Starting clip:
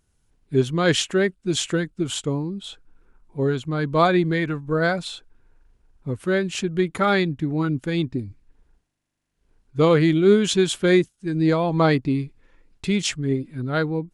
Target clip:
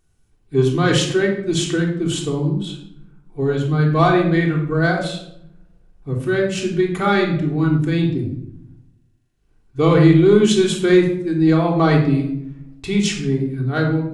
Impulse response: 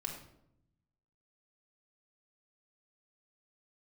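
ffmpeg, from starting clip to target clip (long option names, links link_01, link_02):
-filter_complex "[0:a]acontrast=35[link_01];[1:a]atrim=start_sample=2205[link_02];[link_01][link_02]afir=irnorm=-1:irlink=0,volume=-2.5dB"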